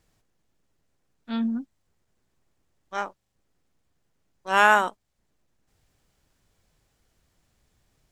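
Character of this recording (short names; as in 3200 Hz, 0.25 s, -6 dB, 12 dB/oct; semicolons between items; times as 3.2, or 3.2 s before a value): noise floor -75 dBFS; spectral tilt -1.0 dB/oct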